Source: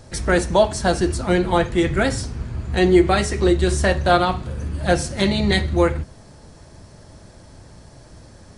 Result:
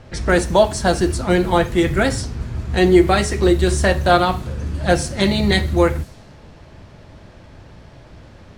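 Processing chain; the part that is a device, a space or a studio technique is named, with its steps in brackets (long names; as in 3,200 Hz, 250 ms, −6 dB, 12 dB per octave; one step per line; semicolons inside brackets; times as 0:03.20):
cassette deck with a dynamic noise filter (white noise bed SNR 30 dB; low-pass that shuts in the quiet parts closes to 2,700 Hz, open at −16.5 dBFS)
level +2 dB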